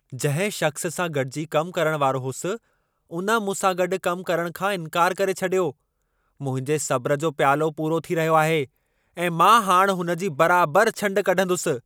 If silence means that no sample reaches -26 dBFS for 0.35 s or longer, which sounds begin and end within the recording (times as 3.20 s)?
3.13–5.70 s
6.42–8.64 s